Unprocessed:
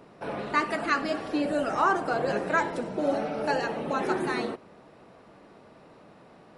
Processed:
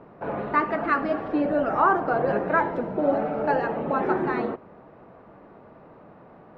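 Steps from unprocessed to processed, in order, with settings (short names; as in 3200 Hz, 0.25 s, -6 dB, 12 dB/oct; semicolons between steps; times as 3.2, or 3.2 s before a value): LPF 1400 Hz 12 dB/oct; bell 310 Hz -2.5 dB 2.5 oct; gain +6 dB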